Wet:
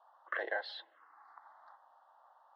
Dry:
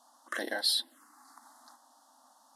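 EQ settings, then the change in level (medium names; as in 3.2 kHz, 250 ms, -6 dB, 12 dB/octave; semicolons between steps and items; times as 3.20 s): elliptic high-pass 400 Hz, stop band 50 dB; low-pass 2.5 kHz 24 dB/octave; 0.0 dB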